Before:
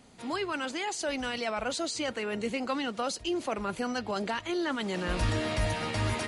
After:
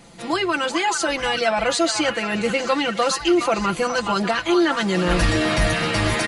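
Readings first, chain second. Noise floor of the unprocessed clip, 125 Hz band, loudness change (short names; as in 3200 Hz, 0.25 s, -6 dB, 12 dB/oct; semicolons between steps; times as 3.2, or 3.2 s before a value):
-46 dBFS, +8.0 dB, +11.5 dB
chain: comb 5.9 ms, depth 78%; on a send: delay with a stepping band-pass 0.418 s, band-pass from 1200 Hz, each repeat 0.7 oct, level -4 dB; on the sum: gain +9 dB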